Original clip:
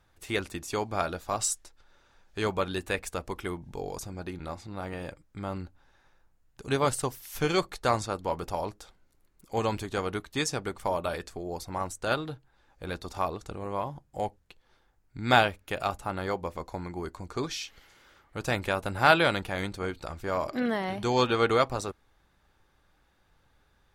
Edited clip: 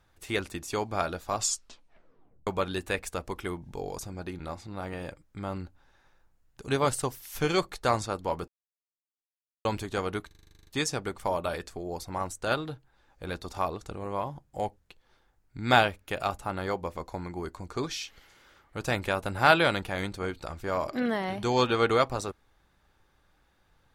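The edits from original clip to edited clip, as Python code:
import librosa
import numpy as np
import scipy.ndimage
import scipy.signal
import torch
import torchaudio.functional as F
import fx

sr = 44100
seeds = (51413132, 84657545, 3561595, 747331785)

y = fx.edit(x, sr, fx.tape_stop(start_s=1.37, length_s=1.1),
    fx.silence(start_s=8.48, length_s=1.17),
    fx.stutter(start_s=10.27, slice_s=0.04, count=11), tone=tone)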